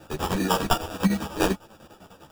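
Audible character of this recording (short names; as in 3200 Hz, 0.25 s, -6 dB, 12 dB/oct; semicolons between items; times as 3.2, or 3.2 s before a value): aliases and images of a low sample rate 2100 Hz, jitter 0%; chopped level 10 Hz, depth 65%, duty 60%; a shimmering, thickened sound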